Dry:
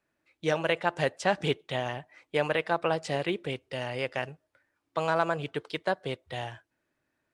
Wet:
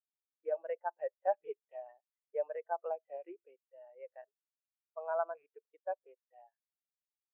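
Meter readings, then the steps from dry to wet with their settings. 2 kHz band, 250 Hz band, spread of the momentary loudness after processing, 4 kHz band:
−21.0 dB, −27.0 dB, 17 LU, below −40 dB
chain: loose part that buzzes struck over −37 dBFS, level −25 dBFS
band-pass filter 470–2,200 Hz
every bin expanded away from the loudest bin 2.5 to 1
level −6 dB

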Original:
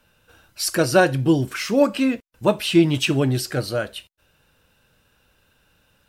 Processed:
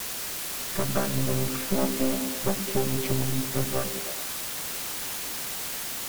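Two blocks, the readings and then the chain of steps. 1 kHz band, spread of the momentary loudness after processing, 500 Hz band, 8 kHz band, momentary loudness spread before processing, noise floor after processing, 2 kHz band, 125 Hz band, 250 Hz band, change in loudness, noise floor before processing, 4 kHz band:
−7.0 dB, 4 LU, −9.5 dB, +2.0 dB, 9 LU, −34 dBFS, −8.5 dB, −6.0 dB, −9.5 dB, −8.0 dB, −63 dBFS, −4.5 dB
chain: channel vocoder with a chord as carrier bare fifth, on C3
low-pass filter 2,800 Hz
downward compressor, threshold −23 dBFS, peak gain reduction 12 dB
half-wave rectification
bit-depth reduction 6 bits, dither triangular
pitch vibrato 1.2 Hz 17 cents
echo through a band-pass that steps 105 ms, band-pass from 210 Hz, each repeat 0.7 octaves, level −3.5 dB
level +3 dB

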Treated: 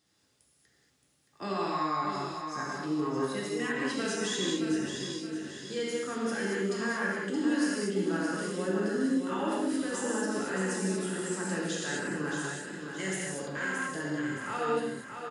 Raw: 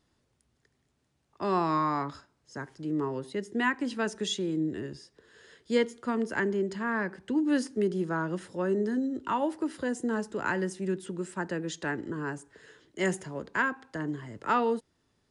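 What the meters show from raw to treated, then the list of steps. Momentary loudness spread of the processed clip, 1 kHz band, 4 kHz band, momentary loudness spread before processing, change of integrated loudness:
6 LU, −2.5 dB, +3.0 dB, 9 LU, −1.0 dB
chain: high-pass filter 100 Hz
high-shelf EQ 2,200 Hz +10 dB
notch filter 970 Hz, Q 13
brickwall limiter −23.5 dBFS, peak gain reduction 11.5 dB
on a send: repeating echo 622 ms, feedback 41%, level −7 dB
on the sum: reverb whose tail is shaped and stops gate 260 ms flat, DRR −5.5 dB
level −6 dB

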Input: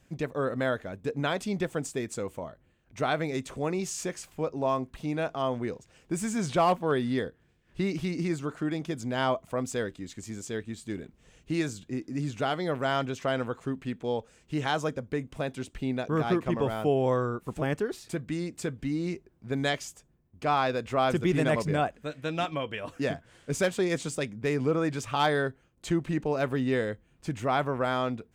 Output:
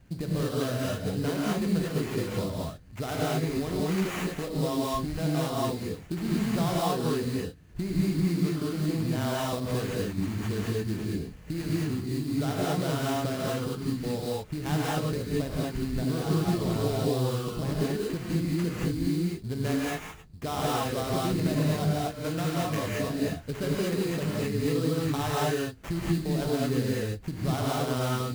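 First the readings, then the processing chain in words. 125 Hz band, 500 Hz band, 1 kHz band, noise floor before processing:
+5.5 dB, −1.5 dB, −3.0 dB, −65 dBFS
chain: low-shelf EQ 280 Hz +11 dB
downward compressor 4 to 1, threshold −30 dBFS, peak gain reduction 12.5 dB
sample-rate reduction 4,500 Hz, jitter 20%
reverb whose tail is shaped and stops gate 250 ms rising, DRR −5.5 dB
level −1.5 dB

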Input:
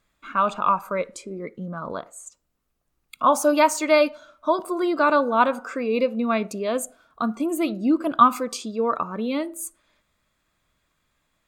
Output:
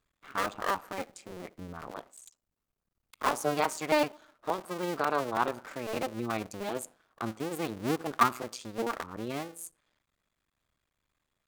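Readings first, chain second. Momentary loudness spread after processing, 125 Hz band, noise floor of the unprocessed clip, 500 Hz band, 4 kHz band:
16 LU, can't be measured, −73 dBFS, −10.5 dB, −6.0 dB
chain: sub-harmonics by changed cycles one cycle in 2, muted
level −7.5 dB

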